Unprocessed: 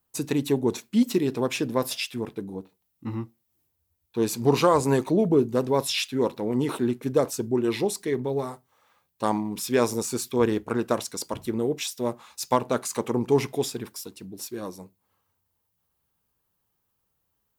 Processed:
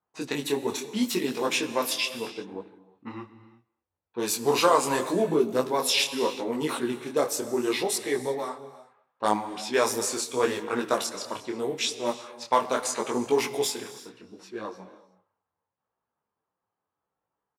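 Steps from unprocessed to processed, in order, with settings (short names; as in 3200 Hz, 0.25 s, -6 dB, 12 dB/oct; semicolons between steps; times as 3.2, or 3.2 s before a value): low-pass opened by the level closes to 1100 Hz, open at -22 dBFS; HPF 830 Hz 6 dB/oct; speakerphone echo 0.23 s, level -24 dB; non-linear reverb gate 0.39 s flat, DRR 12 dB; detuned doubles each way 26 cents; gain +8 dB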